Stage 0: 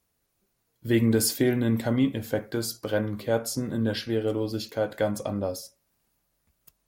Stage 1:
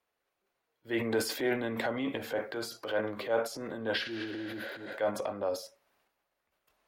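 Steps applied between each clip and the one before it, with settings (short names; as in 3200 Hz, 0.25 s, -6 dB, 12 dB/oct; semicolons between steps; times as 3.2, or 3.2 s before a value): spectral repair 4.08–4.91, 430–10000 Hz both; transient shaper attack -6 dB, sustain +8 dB; three-band isolator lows -19 dB, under 370 Hz, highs -16 dB, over 3500 Hz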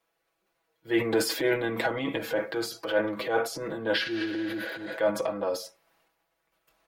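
comb 6.1 ms, depth 84%; gain +3 dB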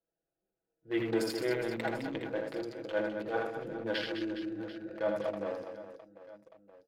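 Wiener smoothing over 41 samples; high shelf 10000 Hz -3.5 dB; on a send: reverse bouncing-ball echo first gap 80 ms, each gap 1.6×, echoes 5; on the sum: gain -6.5 dB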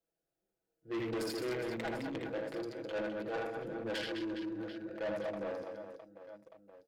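soft clip -32.5 dBFS, distortion -10 dB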